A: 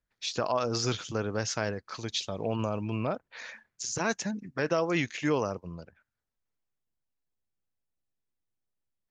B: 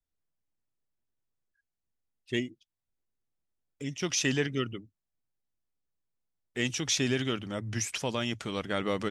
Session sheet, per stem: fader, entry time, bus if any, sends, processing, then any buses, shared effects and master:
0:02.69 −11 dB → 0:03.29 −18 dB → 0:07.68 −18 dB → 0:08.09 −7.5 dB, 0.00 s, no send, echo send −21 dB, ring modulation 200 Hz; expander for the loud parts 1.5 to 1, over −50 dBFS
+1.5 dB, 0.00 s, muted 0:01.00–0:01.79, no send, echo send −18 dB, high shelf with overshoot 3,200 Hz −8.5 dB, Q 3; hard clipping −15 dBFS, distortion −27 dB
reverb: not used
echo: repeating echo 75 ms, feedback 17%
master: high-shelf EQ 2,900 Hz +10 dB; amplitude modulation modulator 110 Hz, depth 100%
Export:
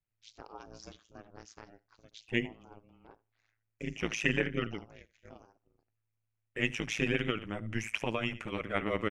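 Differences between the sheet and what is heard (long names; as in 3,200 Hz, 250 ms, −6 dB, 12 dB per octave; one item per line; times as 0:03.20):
stem B: missing hard clipping −15 dBFS, distortion −27 dB
master: missing high-shelf EQ 2,900 Hz +10 dB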